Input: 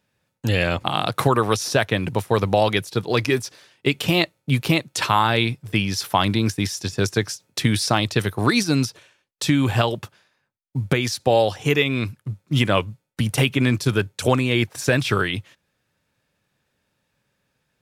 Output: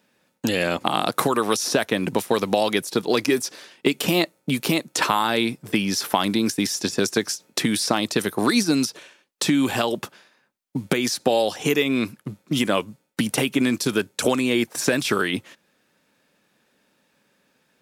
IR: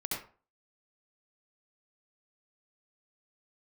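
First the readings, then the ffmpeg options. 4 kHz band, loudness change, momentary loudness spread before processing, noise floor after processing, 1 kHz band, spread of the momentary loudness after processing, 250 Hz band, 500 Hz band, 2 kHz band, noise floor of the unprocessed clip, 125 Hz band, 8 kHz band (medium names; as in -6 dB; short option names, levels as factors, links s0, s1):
-0.5 dB, -1.5 dB, 7 LU, -68 dBFS, -2.0 dB, 6 LU, +1.0 dB, -0.5 dB, -2.0 dB, -74 dBFS, -10.0 dB, +3.0 dB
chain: -filter_complex "[0:a]acrossover=split=2200|5000[s0][s1][s2];[s0]acompressor=threshold=0.0501:ratio=4[s3];[s1]acompressor=threshold=0.00891:ratio=4[s4];[s2]acompressor=threshold=0.0224:ratio=4[s5];[s3][s4][s5]amix=inputs=3:normalize=0,lowshelf=f=150:t=q:w=1.5:g=-13.5,volume=2.24"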